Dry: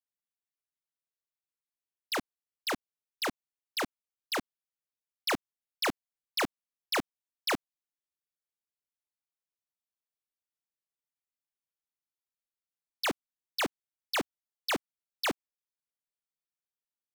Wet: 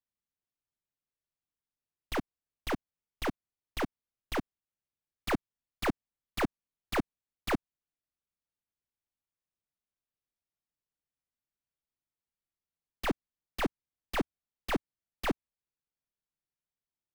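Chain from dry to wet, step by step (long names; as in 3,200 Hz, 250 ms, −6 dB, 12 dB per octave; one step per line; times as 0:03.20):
stylus tracing distortion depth 0.41 ms
low-pass filter 2,800 Hz 6 dB per octave
low-shelf EQ 270 Hz +11.5 dB
level −2 dB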